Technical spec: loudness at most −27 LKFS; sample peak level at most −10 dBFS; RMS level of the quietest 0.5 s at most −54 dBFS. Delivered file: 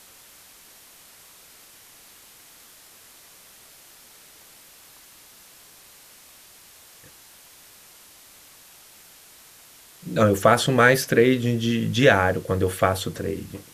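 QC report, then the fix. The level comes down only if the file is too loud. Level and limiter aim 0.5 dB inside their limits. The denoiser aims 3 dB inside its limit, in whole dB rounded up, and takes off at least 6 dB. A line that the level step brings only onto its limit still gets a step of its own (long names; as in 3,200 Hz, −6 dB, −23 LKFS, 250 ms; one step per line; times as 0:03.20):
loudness −20.5 LKFS: out of spec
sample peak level −2.5 dBFS: out of spec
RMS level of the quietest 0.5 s −50 dBFS: out of spec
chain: level −7 dB
brickwall limiter −10.5 dBFS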